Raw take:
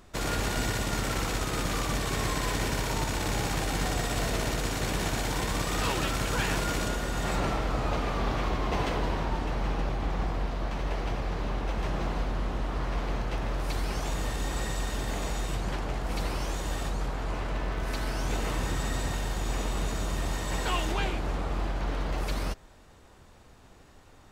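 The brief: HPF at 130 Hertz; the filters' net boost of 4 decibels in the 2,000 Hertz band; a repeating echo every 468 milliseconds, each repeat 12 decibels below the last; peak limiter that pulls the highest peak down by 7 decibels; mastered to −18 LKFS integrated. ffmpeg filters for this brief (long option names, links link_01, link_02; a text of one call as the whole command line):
ffmpeg -i in.wav -af "highpass=130,equalizer=frequency=2000:width_type=o:gain=5,alimiter=limit=-22dB:level=0:latency=1,aecho=1:1:468|936|1404:0.251|0.0628|0.0157,volume=14.5dB" out.wav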